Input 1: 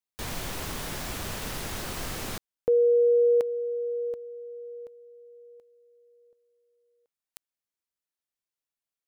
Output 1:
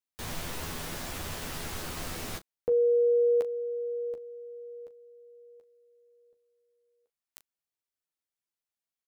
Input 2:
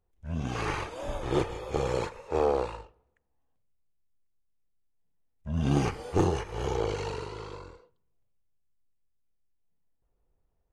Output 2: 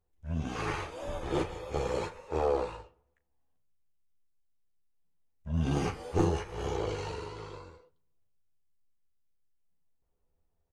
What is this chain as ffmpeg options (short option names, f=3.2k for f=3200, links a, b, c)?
-af "aecho=1:1:12|38:0.562|0.2,volume=-4dB"